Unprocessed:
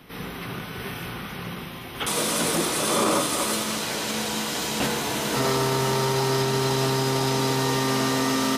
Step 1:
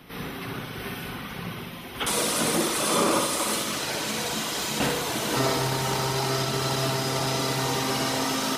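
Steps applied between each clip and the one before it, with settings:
reverb reduction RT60 0.97 s
flutter between parallel walls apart 10.6 metres, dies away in 0.8 s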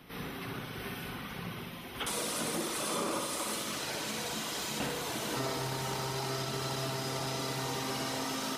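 downward compressor 2 to 1, threshold −29 dBFS, peak gain reduction 6 dB
level −5.5 dB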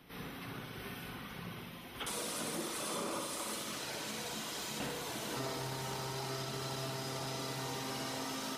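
hum removal 77.74 Hz, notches 39
level −4.5 dB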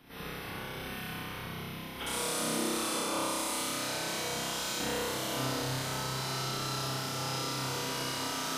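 flutter between parallel walls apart 5.3 metres, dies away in 0.75 s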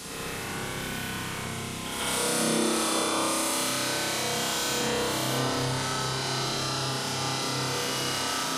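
gate on every frequency bin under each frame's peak −25 dB strong
noise in a band 3,500–11,000 Hz −49 dBFS
backwards echo 146 ms −5 dB
level +5 dB

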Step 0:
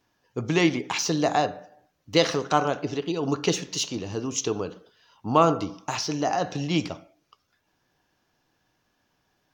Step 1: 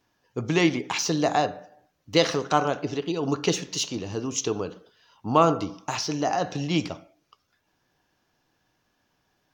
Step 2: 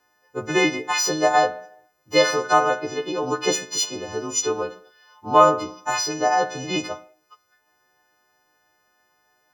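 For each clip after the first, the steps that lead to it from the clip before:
no processing that can be heard
every partial snapped to a pitch grid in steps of 3 semitones; flat-topped bell 830 Hz +9.5 dB 2.8 octaves; level −5 dB

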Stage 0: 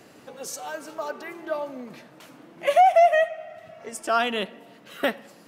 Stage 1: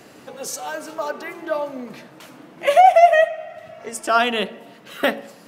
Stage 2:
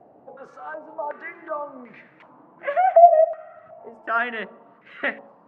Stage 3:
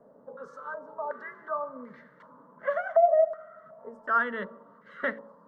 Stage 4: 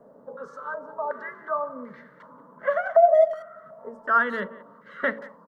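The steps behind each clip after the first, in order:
hum removal 55.99 Hz, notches 14; level +5.5 dB
low-pass on a step sequencer 2.7 Hz 730–2,100 Hz; level −10.5 dB
phaser with its sweep stopped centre 500 Hz, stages 8
far-end echo of a speakerphone 180 ms, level −19 dB; level +4.5 dB

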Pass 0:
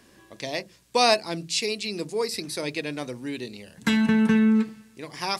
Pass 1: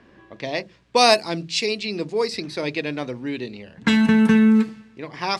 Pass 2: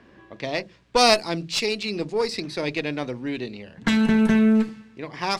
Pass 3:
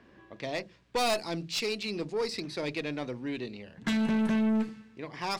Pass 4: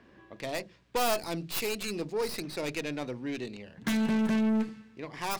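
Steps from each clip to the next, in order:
low-pass that shuts in the quiet parts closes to 2,300 Hz, open at −16 dBFS; level +4.5 dB
one-sided soft clipper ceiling −18 dBFS
soft clipping −17 dBFS, distortion −11 dB; level −5.5 dB
stylus tracing distortion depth 0.23 ms

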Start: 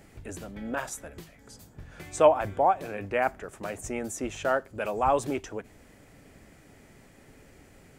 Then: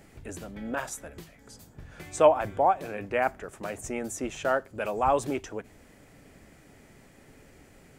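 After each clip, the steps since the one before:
mains-hum notches 50/100 Hz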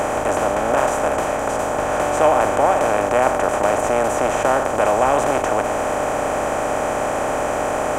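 compressor on every frequency bin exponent 0.2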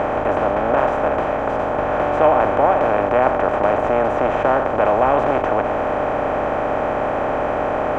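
high-frequency loss of the air 350 metres
level +2 dB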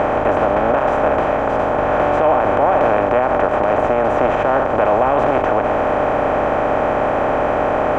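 brickwall limiter −9 dBFS, peak gain reduction 7.5 dB
level +3.5 dB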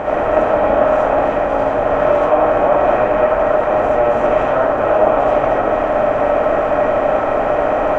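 convolution reverb RT60 0.60 s, pre-delay 30 ms, DRR −5.5 dB
level −6.5 dB

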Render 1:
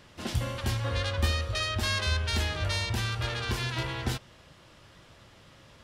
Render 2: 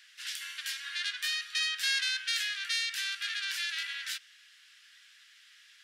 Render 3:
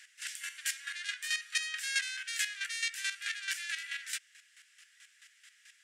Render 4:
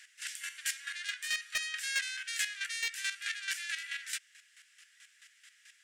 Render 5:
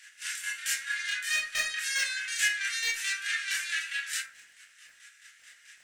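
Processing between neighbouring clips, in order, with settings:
elliptic high-pass filter 1,600 Hz, stop band 60 dB; level +2 dB
square-wave tremolo 4.6 Hz, depth 65%, duty 25%; octave-band graphic EQ 1,000/2,000/4,000/8,000 Hz −4/+6/−6/+11 dB
hard clipping −23 dBFS, distortion −19 dB
surface crackle 17 per second −50 dBFS; convolution reverb RT60 0.40 s, pre-delay 17 ms, DRR −6.5 dB

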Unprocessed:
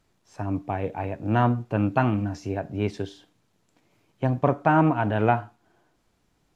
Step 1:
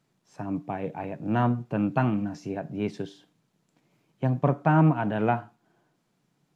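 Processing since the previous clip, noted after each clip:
low shelf with overshoot 100 Hz −13.5 dB, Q 3
level −4 dB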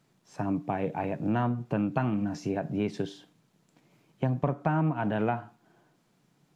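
downward compressor 4 to 1, threshold −29 dBFS, peak gain reduction 12 dB
level +4 dB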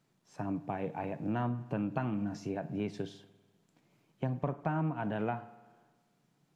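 spring reverb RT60 1.4 s, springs 49 ms, chirp 50 ms, DRR 16.5 dB
level −6 dB

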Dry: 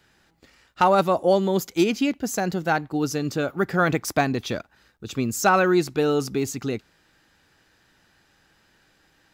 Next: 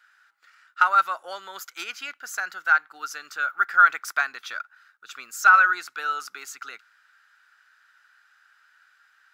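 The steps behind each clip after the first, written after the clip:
high-pass with resonance 1,400 Hz, resonance Q 7.2
level −6 dB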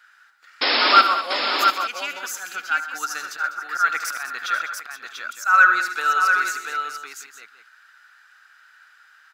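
volume swells 190 ms
sound drawn into the spectrogram noise, 0:00.61–0:01.02, 230–5,400 Hz −25 dBFS
multi-tap delay 77/127/200/491/690/860 ms −11.5/−13.5/−13.5/−18/−5/−14.5 dB
level +5.5 dB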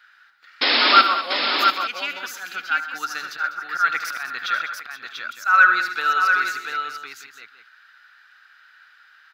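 graphic EQ with 10 bands 125 Hz +11 dB, 250 Hz +3 dB, 2,000 Hz +3 dB, 4,000 Hz +7 dB, 8,000 Hz −10 dB
level −2 dB

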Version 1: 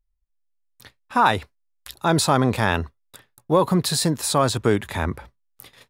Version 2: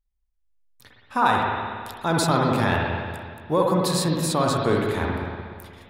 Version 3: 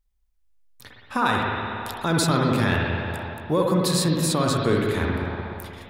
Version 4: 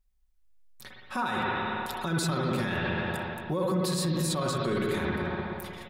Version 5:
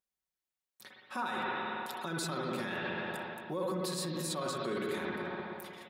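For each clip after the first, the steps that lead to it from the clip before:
spring reverb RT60 1.9 s, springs 56/60 ms, chirp 75 ms, DRR −1.5 dB; level −4.5 dB
dynamic equaliser 810 Hz, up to −8 dB, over −37 dBFS, Q 1.5; in parallel at −1.5 dB: downward compressor, threshold −32 dBFS, peak gain reduction 14 dB
comb filter 5.4 ms, depth 59%; brickwall limiter −18 dBFS, peak gain reduction 11 dB; level −2.5 dB
high-pass filter 220 Hz 12 dB per octave; level −5.5 dB

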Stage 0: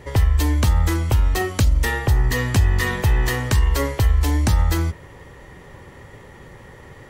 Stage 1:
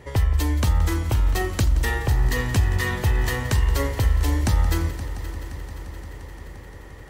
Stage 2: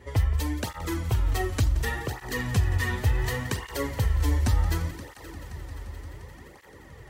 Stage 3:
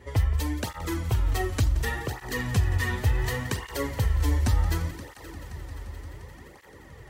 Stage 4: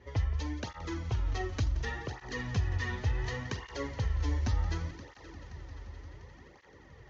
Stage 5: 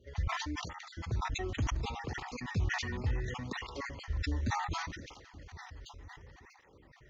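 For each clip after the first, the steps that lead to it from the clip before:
echo machine with several playback heads 174 ms, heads first and third, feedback 74%, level −16 dB; level −3.5 dB
through-zero flanger with one copy inverted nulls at 0.68 Hz, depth 6.7 ms; level −1.5 dB
no processing that can be heard
Butterworth low-pass 6,700 Hz 96 dB per octave; level −7 dB
time-frequency cells dropped at random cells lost 37%; dynamic equaliser 230 Hz, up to +6 dB, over −49 dBFS, Q 1; level that may fall only so fast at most 42 dB per second; level −4 dB

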